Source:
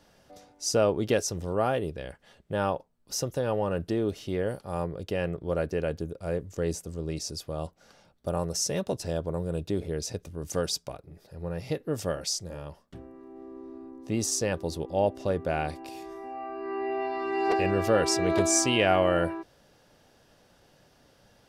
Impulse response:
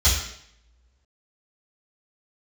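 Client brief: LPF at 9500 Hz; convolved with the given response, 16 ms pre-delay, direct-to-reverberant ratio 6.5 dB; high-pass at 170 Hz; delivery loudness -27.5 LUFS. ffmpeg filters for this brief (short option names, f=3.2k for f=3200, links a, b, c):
-filter_complex "[0:a]highpass=170,lowpass=9.5k,asplit=2[a][b];[1:a]atrim=start_sample=2205,adelay=16[c];[b][c]afir=irnorm=-1:irlink=0,volume=-22dB[d];[a][d]amix=inputs=2:normalize=0,volume=1dB"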